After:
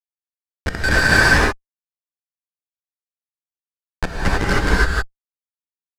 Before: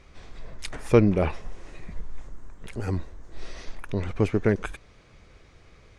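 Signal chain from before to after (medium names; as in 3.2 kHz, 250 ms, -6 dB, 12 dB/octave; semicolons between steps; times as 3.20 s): comb 6.5 ms, depth 95%; decimation with a swept rate 17×, swing 60% 1.3 Hz; granulator 100 ms, spray 100 ms, pitch spread up and down by 0 st; resonant high-pass 1.6 kHz, resonance Q 10; Schmitt trigger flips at -20.5 dBFS; distance through air 60 m; gated-style reverb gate 340 ms rising, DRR -7 dB; trim +5.5 dB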